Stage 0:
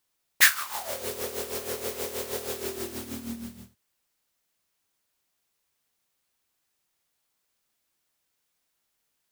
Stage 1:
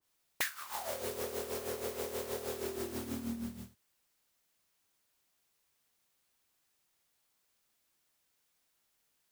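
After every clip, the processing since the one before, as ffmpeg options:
-af "acompressor=threshold=-33dB:ratio=10,adynamicequalizer=threshold=0.00158:dfrequency=1700:dqfactor=0.7:tfrequency=1700:tqfactor=0.7:attack=5:release=100:ratio=0.375:range=2.5:mode=cutabove:tftype=highshelf"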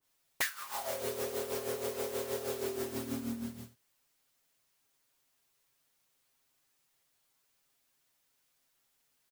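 -af "aecho=1:1:7.4:0.65"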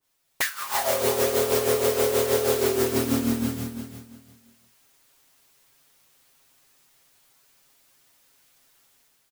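-filter_complex "[0:a]dynaudnorm=f=220:g=5:m=10.5dB,asplit=2[a][b];[b]aecho=0:1:346|692|1038:0.376|0.094|0.0235[c];[a][c]amix=inputs=2:normalize=0,volume=3dB"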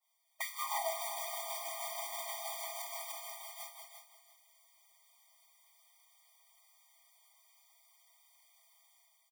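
-af "alimiter=limit=-21dB:level=0:latency=1:release=168,afftfilt=real='re*eq(mod(floor(b*sr/1024/620),2),1)':imag='im*eq(mod(floor(b*sr/1024/620),2),1)':win_size=1024:overlap=0.75,volume=-2.5dB"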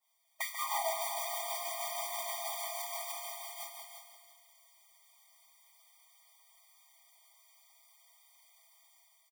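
-filter_complex "[0:a]asplit=2[a][b];[b]asoftclip=type=hard:threshold=-32.5dB,volume=-11dB[c];[a][c]amix=inputs=2:normalize=0,aecho=1:1:140|280|420|560|700|840:0.316|0.177|0.0992|0.0555|0.0311|0.0174"

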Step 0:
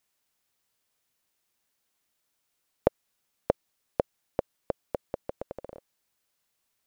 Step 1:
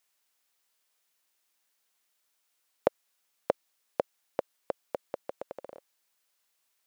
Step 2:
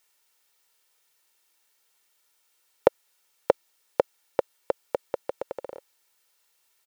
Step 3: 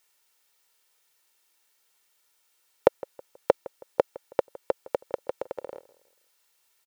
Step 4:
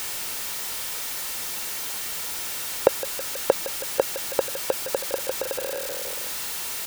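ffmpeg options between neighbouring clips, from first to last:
-af "highpass=f=650:p=1,volume=2dB"
-af "aecho=1:1:2.2:0.43,volume=6dB"
-filter_complex "[0:a]asplit=2[a][b];[b]adelay=161,lowpass=f=2k:p=1,volume=-20dB,asplit=2[c][d];[d]adelay=161,lowpass=f=2k:p=1,volume=0.39,asplit=2[e][f];[f]adelay=161,lowpass=f=2k:p=1,volume=0.39[g];[a][c][e][g]amix=inputs=4:normalize=0"
-af "aeval=exprs='val(0)+0.5*0.0562*sgn(val(0))':c=same"

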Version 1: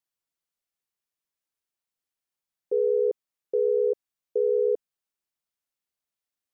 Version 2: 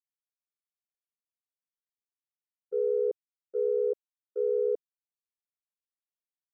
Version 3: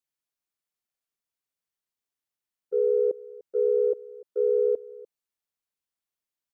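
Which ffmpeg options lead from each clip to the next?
-af "agate=range=-33dB:threshold=-18dB:ratio=3:detection=peak"
-af "aecho=1:1:296:0.0944,volume=4.5dB"

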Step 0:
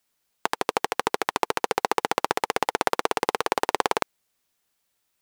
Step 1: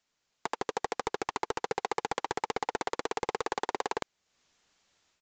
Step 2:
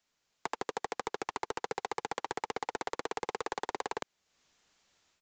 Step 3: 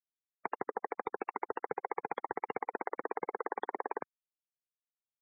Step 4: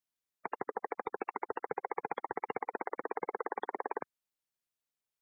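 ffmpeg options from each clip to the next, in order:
-af "dynaudnorm=f=170:g=3:m=9.5dB,aresample=16000,asoftclip=type=tanh:threshold=-18dB,aresample=44100,volume=-2dB"
-filter_complex "[0:a]acrossover=split=150|3900[a][b][c];[a]acompressor=threshold=-56dB:ratio=4[d];[b]acompressor=threshold=-31dB:ratio=4[e];[c]acompressor=threshold=-47dB:ratio=4[f];[d][e][f]amix=inputs=3:normalize=0"
-af "afftfilt=real='re*gte(hypot(re,im),0.0224)':imag='im*gte(hypot(re,im),0.0224)':win_size=1024:overlap=0.75"
-af "alimiter=level_in=2dB:limit=-24dB:level=0:latency=1:release=22,volume=-2dB,volume=4dB"

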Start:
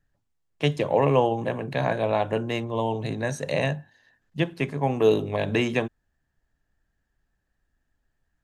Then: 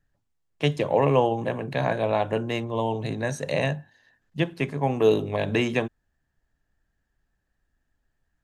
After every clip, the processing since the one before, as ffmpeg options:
-af anull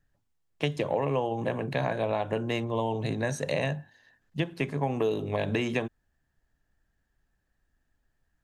-af "acompressor=threshold=-24dB:ratio=6"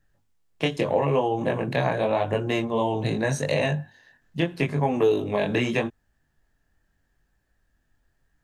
-af "flanger=delay=19.5:depth=5:speed=0.82,volume=8dB"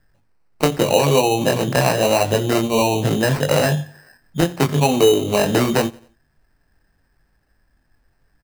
-af "acrusher=samples=13:mix=1:aa=0.000001,aecho=1:1:87|174|261:0.0708|0.029|0.0119,volume=7dB"

